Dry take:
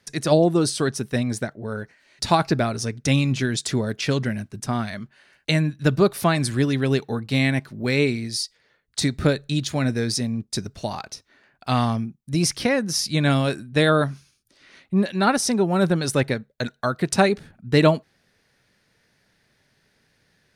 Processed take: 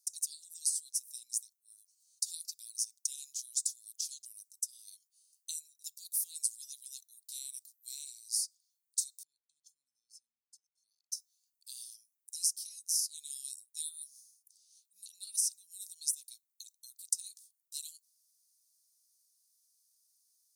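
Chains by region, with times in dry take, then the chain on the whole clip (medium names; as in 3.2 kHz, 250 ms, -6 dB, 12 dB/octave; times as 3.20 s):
9.23–11.12 s: boxcar filter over 46 samples + compression, threshold -29 dBFS
whole clip: inverse Chebyshev high-pass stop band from 1.9 kHz, stop band 60 dB; tilt EQ +4.5 dB/octave; compression 2.5:1, threshold -22 dBFS; trim -9 dB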